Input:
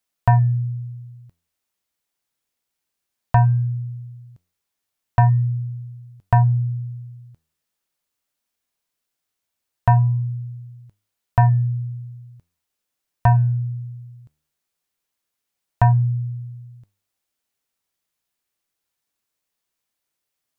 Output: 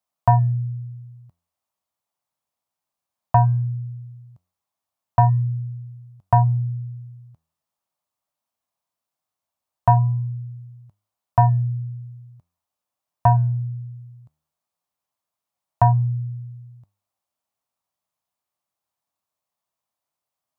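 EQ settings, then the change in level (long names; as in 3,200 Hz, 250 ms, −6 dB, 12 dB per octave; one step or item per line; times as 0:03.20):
high-pass filter 73 Hz
bass and treble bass +7 dB, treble +1 dB
flat-topped bell 840 Hz +11 dB 1.3 octaves
−8.0 dB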